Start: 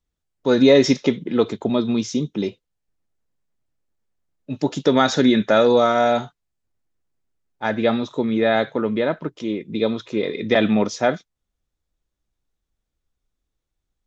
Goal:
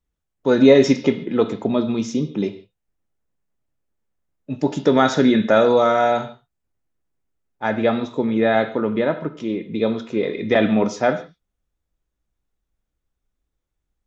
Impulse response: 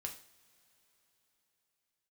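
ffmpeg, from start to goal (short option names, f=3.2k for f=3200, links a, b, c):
-filter_complex "[0:a]asplit=2[a][b];[b]lowpass=f=4.8k:w=0.5412,lowpass=f=4.8k:w=1.3066[c];[1:a]atrim=start_sample=2205,atrim=end_sample=3969,asetrate=22932,aresample=44100[d];[c][d]afir=irnorm=-1:irlink=0,volume=-6dB[e];[a][e]amix=inputs=2:normalize=0,volume=-2.5dB"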